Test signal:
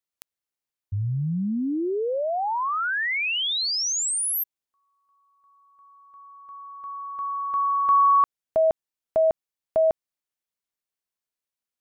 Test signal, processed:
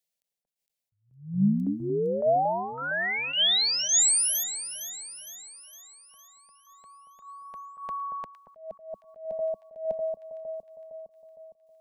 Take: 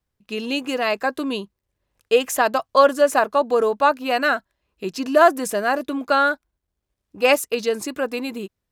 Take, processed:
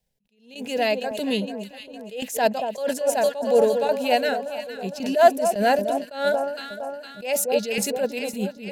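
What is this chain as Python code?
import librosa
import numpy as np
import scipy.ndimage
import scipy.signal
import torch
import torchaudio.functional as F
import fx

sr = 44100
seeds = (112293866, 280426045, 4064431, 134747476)

y = fx.dynamic_eq(x, sr, hz=200.0, q=4.5, threshold_db=-45.0, ratio=4.0, max_db=5)
y = fx.fixed_phaser(y, sr, hz=320.0, stages=6)
y = fx.tremolo_shape(y, sr, shape='saw_down', hz=1.8, depth_pct=80)
y = fx.echo_alternate(y, sr, ms=230, hz=1200.0, feedback_pct=71, wet_db=-9.5)
y = fx.attack_slew(y, sr, db_per_s=130.0)
y = y * librosa.db_to_amplitude(7.0)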